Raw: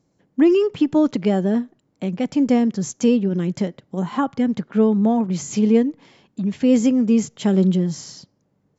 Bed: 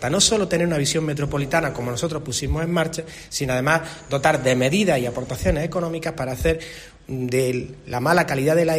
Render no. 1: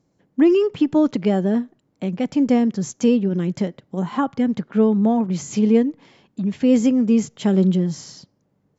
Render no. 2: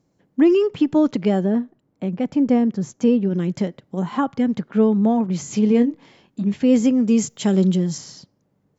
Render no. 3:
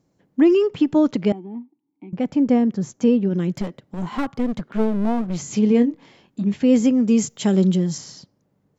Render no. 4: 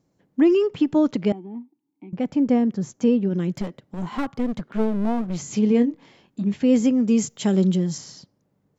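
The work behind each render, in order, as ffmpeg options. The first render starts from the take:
-af "highshelf=f=6.6k:g=-4.5"
-filter_complex "[0:a]asettb=1/sr,asplit=3[a][b][c];[a]atrim=end=1.464[d];[b]atrim=start=1.46:end=3.23,asetpts=PTS-STARTPTS,afade=t=in:d=0.004:c=qsin,afade=t=out:st=1.766:d=0.004:c=qsin,highshelf=f=2.5k:g=-9[e];[c]atrim=start=3.226[f];[d][e]acrossfade=d=0.004:c1=hsin:c2=qsin[g];[g][f]acrossfade=d=0.004:c1=qsin:c2=hsin,asettb=1/sr,asplit=3[h][i][j];[h]atrim=end=5.684[k];[i]atrim=start=5.68:end=6.54,asetpts=PTS-STARTPTS,afade=t=in:d=0.004:c=qsin,afade=t=out:st=0.856:d=0.004:c=qsin,asplit=2[l][m];[m]adelay=25,volume=-8dB[n];[l][n]amix=inputs=2:normalize=0,atrim=end_sample=37926[o];[j]atrim=start=6.536[p];[k][o]acrossfade=d=0.004:c1=hsin:c2=qsin[q];[q][p]acrossfade=d=0.004:c1=qsin:c2=hsin,asettb=1/sr,asplit=3[r][s][t];[r]atrim=end=7.064[u];[s]atrim=start=7.06:end=7.98,asetpts=PTS-STARTPTS,afade=t=in:d=0.004:c=qsin,afade=t=out:st=0.916:d=0.004:c=qsin,aemphasis=mode=production:type=50fm[v];[t]atrim=start=7.976[w];[u][v]acrossfade=d=0.004:c1=hsin:c2=qsin[x];[x][w]acrossfade=d=0.004:c1=qsin:c2=hsin"
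-filter_complex "[0:a]asettb=1/sr,asplit=3[a][b][c];[a]atrim=end=1.324[d];[b]atrim=start=1.32:end=2.13,asetpts=PTS-STARTPTS,afade=t=in:d=0.004:c=qsin,afade=t=out:st=0.806:d=0.004:c=qsin,asplit=3[e][f][g];[e]bandpass=f=300:t=q:w=8,volume=0dB[h];[f]bandpass=f=870:t=q:w=8,volume=-6dB[i];[g]bandpass=f=2.24k:t=q:w=8,volume=-9dB[j];[h][i][j]amix=inputs=3:normalize=0[k];[c]atrim=start=2.126[l];[d][k]acrossfade=d=0.004:c1=hsin:c2=qsin[m];[m][l]acrossfade=d=0.004:c1=qsin:c2=hsin,asplit=3[n][o][p];[n]afade=t=out:st=3.54:d=0.02[q];[o]aeval=exprs='clip(val(0),-1,0.0398)':c=same,afade=t=in:st=3.54:d=0.02,afade=t=out:st=5.36:d=0.02[r];[p]afade=t=in:st=5.36:d=0.02[s];[q][r][s]amix=inputs=3:normalize=0"
-af "volume=-2dB"

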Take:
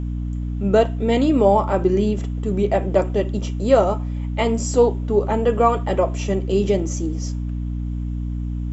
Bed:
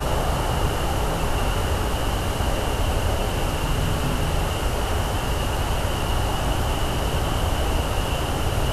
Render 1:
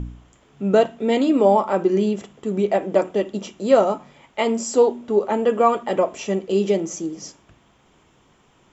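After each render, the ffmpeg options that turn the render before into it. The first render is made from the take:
-af "bandreject=f=60:t=h:w=4,bandreject=f=120:t=h:w=4,bandreject=f=180:t=h:w=4,bandreject=f=240:t=h:w=4,bandreject=f=300:t=h:w=4"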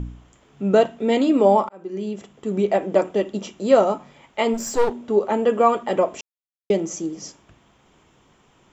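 -filter_complex "[0:a]asplit=3[a][b][c];[a]afade=t=out:st=4.53:d=0.02[d];[b]aeval=exprs='clip(val(0),-1,0.0355)':c=same,afade=t=in:st=4.53:d=0.02,afade=t=out:st=5.01:d=0.02[e];[c]afade=t=in:st=5.01:d=0.02[f];[d][e][f]amix=inputs=3:normalize=0,asplit=4[g][h][i][j];[g]atrim=end=1.69,asetpts=PTS-STARTPTS,afade=t=out:st=1.686:d=0.004:c=hsin[k];[h]atrim=start=1.69:end=6.21,asetpts=PTS-STARTPTS,afade=t=in:d=0.88,afade=t=out:st=4.516:d=0.004:c=hsin[l];[i]atrim=start=6.21:end=6.7,asetpts=PTS-STARTPTS,volume=0[m];[j]atrim=start=6.7,asetpts=PTS-STARTPTS,afade=t=in:d=0.004:c=hsin[n];[k][l][m][n]concat=n=4:v=0:a=1"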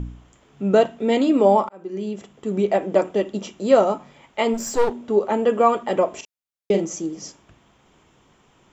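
-filter_complex "[0:a]asettb=1/sr,asplit=3[a][b][c];[a]atrim=end=6.104[d];[b]atrim=start=6.1:end=6.85,asetpts=PTS-STARTPTS,afade=t=in:d=0.004:c=qsin,afade=t=out:st=0.746:d=0.004:c=qsin,asplit=2[e][f];[f]adelay=41,volume=-7.5dB[g];[e][g]amix=inputs=2:normalize=0,atrim=end_sample=33075[h];[c]atrim=start=6.846[i];[d][h]acrossfade=d=0.004:c1=hsin:c2=qsin[j];[j][i]acrossfade=d=0.004:c1=qsin:c2=hsin"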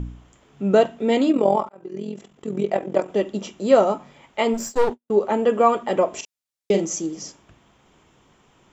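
-filter_complex "[0:a]asettb=1/sr,asplit=3[a][b][c];[a]atrim=end=1.324[d];[b]atrim=start=1.32:end=3.09,asetpts=PTS-STARTPTS,afade=t=in:d=0.004:c=qsin,afade=t=out:st=1.766:d=0.004:c=qsin,tremolo=f=43:d=0.75[e];[c]atrim=start=3.086[f];[d][e]acrossfade=d=0.004:c1=hsin:c2=qsin[g];[g][f]acrossfade=d=0.004:c1=qsin:c2=hsin,asplit=3[h][i][j];[h]afade=t=out:st=4.66:d=0.02[k];[i]agate=range=-52dB:threshold=-30dB:ratio=16:release=100:detection=peak,afade=t=in:st=4.66:d=0.02,afade=t=out:st=5.25:d=0.02[l];[j]afade=t=in:st=5.25:d=0.02[m];[k][l][m]amix=inputs=3:normalize=0,asettb=1/sr,asplit=3[n][o][p];[n]atrim=end=6.134[q];[o]atrim=start=6.13:end=7.23,asetpts=PTS-STARTPTS,afade=t=in:d=0.004:c=qsin,afade=t=out:st=1.096:d=0.004:c=qsin,equalizer=f=6.6k:w=0.52:g=5[r];[p]atrim=start=7.226[s];[q][r]acrossfade=d=0.004:c1=hsin:c2=qsin[t];[t][s]acrossfade=d=0.004:c1=qsin:c2=hsin"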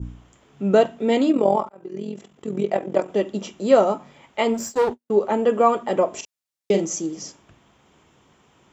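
-af "highpass=52,adynamicequalizer=threshold=0.0178:dfrequency=2600:dqfactor=0.85:tfrequency=2600:tqfactor=0.85:attack=5:release=100:ratio=0.375:range=1.5:mode=cutabove:tftype=bell"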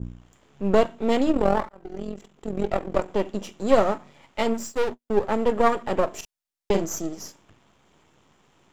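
-af "aeval=exprs='if(lt(val(0),0),0.251*val(0),val(0))':c=same"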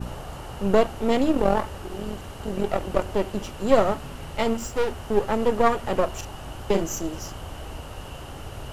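-filter_complex "[1:a]volume=-14dB[a];[0:a][a]amix=inputs=2:normalize=0"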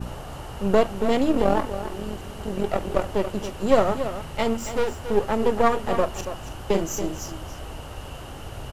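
-af "aecho=1:1:280:0.299"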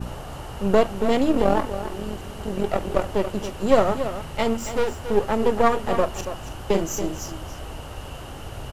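-af "volume=1dB"

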